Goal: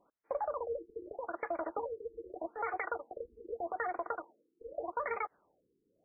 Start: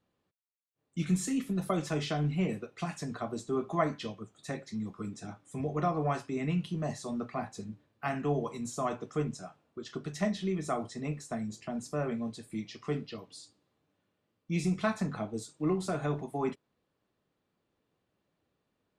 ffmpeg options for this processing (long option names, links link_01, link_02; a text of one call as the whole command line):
ffmpeg -i in.wav -af "acompressor=threshold=-43dB:ratio=6,asetrate=138474,aresample=44100,afftfilt=real='re*lt(b*sr/1024,460*pow(2500/460,0.5+0.5*sin(2*PI*0.82*pts/sr)))':imag='im*lt(b*sr/1024,460*pow(2500/460,0.5+0.5*sin(2*PI*0.82*pts/sr)))':win_size=1024:overlap=0.75,volume=10dB" out.wav